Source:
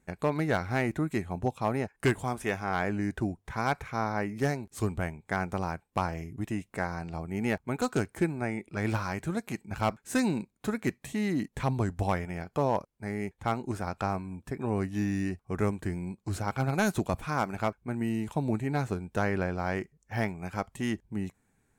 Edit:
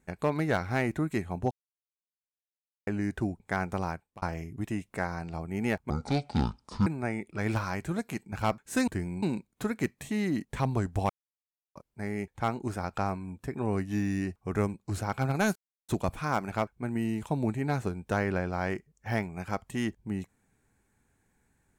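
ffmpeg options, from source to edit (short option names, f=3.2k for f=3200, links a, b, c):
-filter_complex "[0:a]asplit=13[a][b][c][d][e][f][g][h][i][j][k][l][m];[a]atrim=end=1.51,asetpts=PTS-STARTPTS,afade=t=out:st=1.506:d=0.004:c=hsin[n];[b]atrim=start=1.51:end=2.87,asetpts=PTS-STARTPTS,volume=0[o];[c]atrim=start=2.87:end=3.402,asetpts=PTS-STARTPTS,afade=t=in:d=0.004:c=hsin[p];[d]atrim=start=5.198:end=6.02,asetpts=PTS-STARTPTS,afade=t=out:st=0.502:d=0.32[q];[e]atrim=start=6.02:end=7.704,asetpts=PTS-STARTPTS,afade=t=in:d=0.004:c=hsin[r];[f]atrim=start=7.7:end=8.25,asetpts=PTS-STARTPTS,asetrate=25137,aresample=44100[s];[g]atrim=start=8.246:end=10.262[t];[h]atrim=start=15.778:end=16.132[u];[i]atrim=start=10.258:end=12.13,asetpts=PTS-STARTPTS,afade=t=out:st=1.868:d=0.004:c=hsin[v];[j]atrim=start=12.13:end=12.79,asetpts=PTS-STARTPTS,volume=0[w];[k]atrim=start=12.79:end=15.782,asetpts=PTS-STARTPTS,afade=t=in:d=0.004:c=hsin[x];[l]atrim=start=16.128:end=16.94,asetpts=PTS-STARTPTS,afade=t=out:st=0.808:d=0.004:c=hsin,apad=pad_dur=0.33[y];[m]atrim=start=16.94,asetpts=PTS-STARTPTS,afade=t=in:d=0.004:c=hsin[z];[n][o][p]concat=n=3:v=0:a=1[aa];[q][r]concat=n=2:v=0:a=1[ab];[aa][ab]acrossfade=d=0.004:c1=hsin:c2=hsin[ac];[ac][s]acrossfade=d=0.004:c1=hsin:c2=hsin[ad];[ad][t]acrossfade=d=0.004:c1=hsin:c2=hsin[ae];[ae][u]acrossfade=d=0.004:c1=hsin:c2=hsin[af];[v][w][x]concat=n=3:v=0:a=1[ag];[af][ag]acrossfade=d=0.004:c1=hsin:c2=hsin[ah];[y][z]concat=n=2:v=0:a=1[ai];[ah][ai]acrossfade=d=0.004:c1=hsin:c2=hsin"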